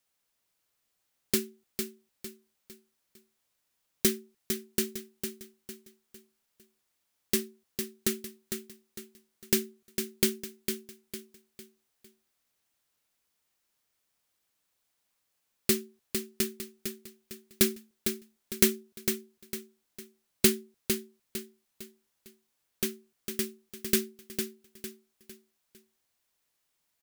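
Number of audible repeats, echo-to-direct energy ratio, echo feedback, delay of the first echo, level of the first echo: 4, −6.5 dB, 38%, 454 ms, −7.0 dB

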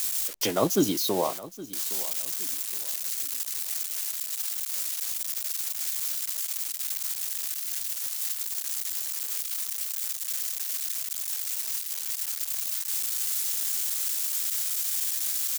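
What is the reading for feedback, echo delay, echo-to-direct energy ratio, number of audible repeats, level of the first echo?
31%, 816 ms, −17.0 dB, 2, −17.5 dB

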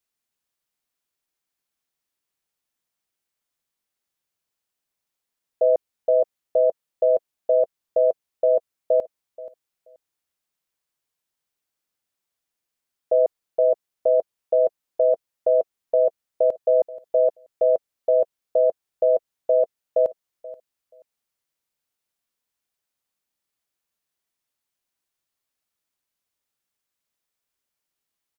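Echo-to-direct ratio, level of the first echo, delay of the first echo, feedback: −18.5 dB, −18.5 dB, 480 ms, 18%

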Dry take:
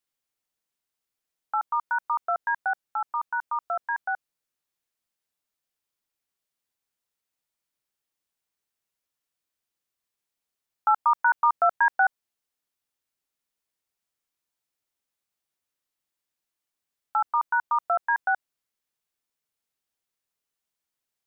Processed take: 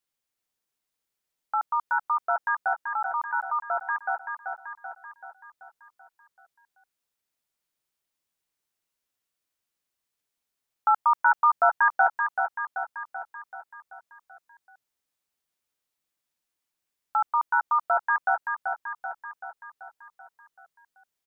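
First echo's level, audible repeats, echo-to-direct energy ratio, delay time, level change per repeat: −6.0 dB, 6, −4.5 dB, 384 ms, −5.0 dB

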